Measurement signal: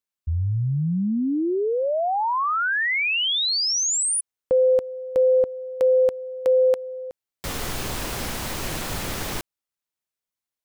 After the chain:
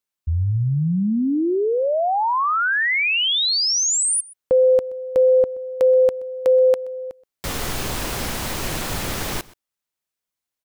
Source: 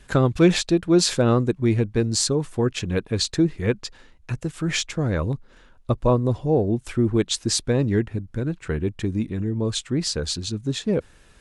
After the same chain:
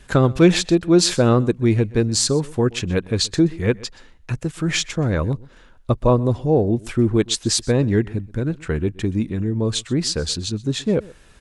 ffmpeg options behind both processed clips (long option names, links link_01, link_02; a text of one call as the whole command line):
ffmpeg -i in.wav -af "aecho=1:1:126:0.0794,volume=3dB" out.wav